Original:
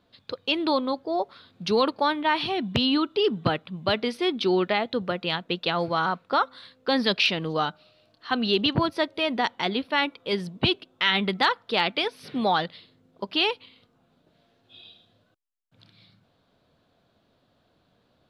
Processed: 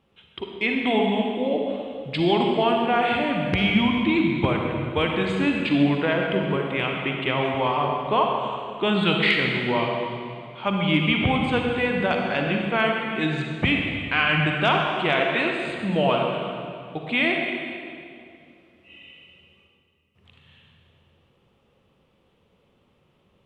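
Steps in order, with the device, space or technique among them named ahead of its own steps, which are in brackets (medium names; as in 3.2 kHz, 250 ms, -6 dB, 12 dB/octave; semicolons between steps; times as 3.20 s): slowed and reverbed (tape speed -22%; reverberation RT60 2.4 s, pre-delay 39 ms, DRR 0.5 dB)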